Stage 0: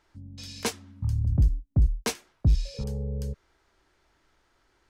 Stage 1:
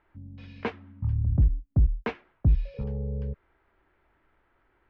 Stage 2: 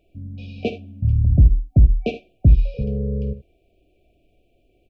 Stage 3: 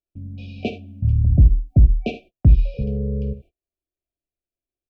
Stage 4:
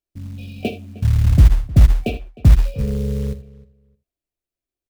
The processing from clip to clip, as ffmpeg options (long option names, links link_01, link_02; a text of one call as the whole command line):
ffmpeg -i in.wav -af "lowpass=frequency=2500:width=0.5412,lowpass=frequency=2500:width=1.3066" out.wav
ffmpeg -i in.wav -filter_complex "[0:a]afftfilt=real='re*(1-between(b*sr/4096,750,2300))':imag='im*(1-between(b*sr/4096,750,2300))':win_size=4096:overlap=0.75,asplit=2[link_01][link_02];[link_02]aecho=0:1:53|77:0.211|0.168[link_03];[link_01][link_03]amix=inputs=2:normalize=0,volume=8.5dB" out.wav
ffmpeg -i in.wav -af "agate=range=-34dB:threshold=-42dB:ratio=16:detection=peak,bandreject=frequency=470:width=12" out.wav
ffmpeg -i in.wav -filter_complex "[0:a]acrusher=bits=6:mode=log:mix=0:aa=0.000001,asplit=2[link_01][link_02];[link_02]adelay=309,lowpass=frequency=2800:poles=1,volume=-20dB,asplit=2[link_03][link_04];[link_04]adelay=309,lowpass=frequency=2800:poles=1,volume=0.18[link_05];[link_01][link_03][link_05]amix=inputs=3:normalize=0,volume=2dB" out.wav